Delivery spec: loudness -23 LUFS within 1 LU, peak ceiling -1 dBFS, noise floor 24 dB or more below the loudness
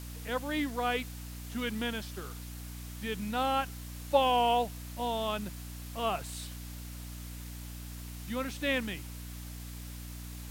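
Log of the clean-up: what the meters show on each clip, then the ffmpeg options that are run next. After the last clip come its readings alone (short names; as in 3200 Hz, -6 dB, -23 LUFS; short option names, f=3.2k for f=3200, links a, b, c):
hum 60 Hz; harmonics up to 300 Hz; hum level -41 dBFS; noise floor -43 dBFS; noise floor target -59 dBFS; loudness -34.5 LUFS; peak -13.5 dBFS; loudness target -23.0 LUFS
-> -af "bandreject=f=60:t=h:w=6,bandreject=f=120:t=h:w=6,bandreject=f=180:t=h:w=6,bandreject=f=240:t=h:w=6,bandreject=f=300:t=h:w=6"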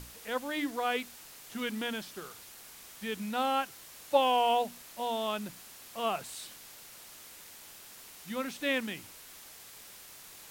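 hum none; noise floor -51 dBFS; noise floor target -57 dBFS
-> -af "afftdn=nr=6:nf=-51"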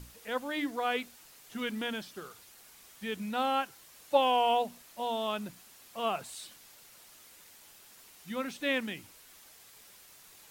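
noise floor -56 dBFS; noise floor target -57 dBFS
-> -af "afftdn=nr=6:nf=-56"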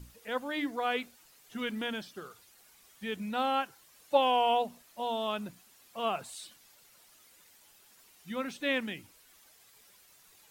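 noise floor -61 dBFS; loudness -33.0 LUFS; peak -13.5 dBFS; loudness target -23.0 LUFS
-> -af "volume=10dB"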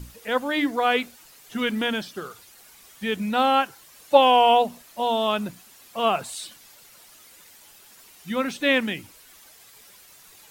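loudness -23.0 LUFS; peak -3.5 dBFS; noise floor -51 dBFS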